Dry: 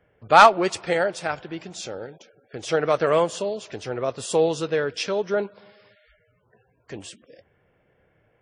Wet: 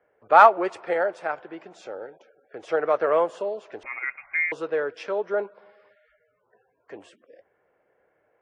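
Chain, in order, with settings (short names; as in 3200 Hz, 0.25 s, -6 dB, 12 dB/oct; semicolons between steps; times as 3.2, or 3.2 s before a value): 3.83–4.52 inverted band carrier 2600 Hz; three-band isolator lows -20 dB, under 330 Hz, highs -19 dB, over 2000 Hz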